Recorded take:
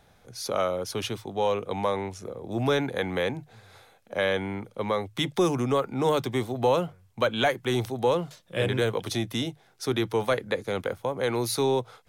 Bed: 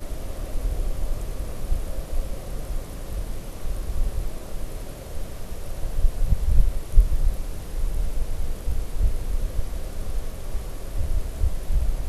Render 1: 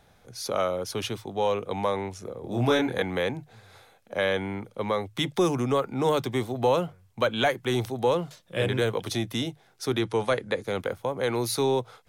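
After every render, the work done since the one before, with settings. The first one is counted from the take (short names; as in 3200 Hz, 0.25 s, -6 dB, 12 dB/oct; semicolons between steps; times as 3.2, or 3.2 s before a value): 2.41–3.02 doubler 25 ms -2.5 dB; 9.99–10.63 steep low-pass 11000 Hz 96 dB/oct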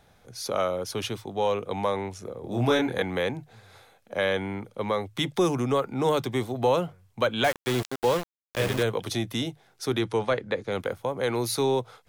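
7.44–8.83 sample gate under -27.5 dBFS; 10.19–10.72 air absorption 84 m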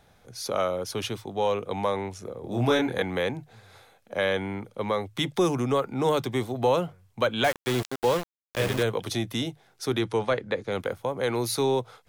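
nothing audible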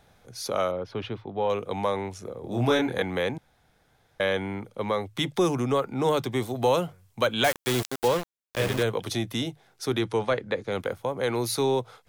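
0.71–1.5 air absorption 340 m; 3.38–4.2 room tone; 6.42–8.08 high shelf 4500 Hz +7.5 dB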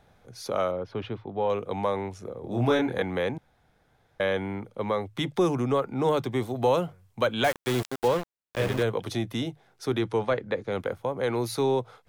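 high shelf 2900 Hz -7.5 dB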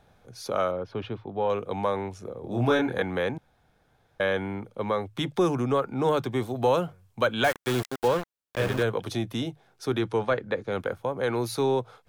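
dynamic EQ 1500 Hz, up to +4 dB, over -42 dBFS, Q 2.4; notch 2000 Hz, Q 15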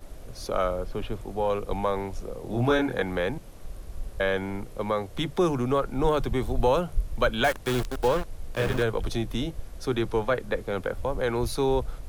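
add bed -11 dB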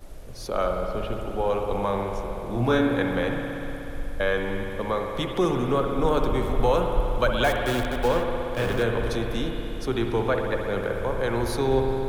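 spring tank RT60 3.6 s, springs 60 ms, chirp 60 ms, DRR 2 dB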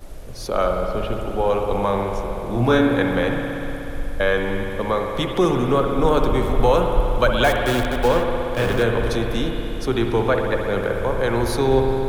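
gain +5 dB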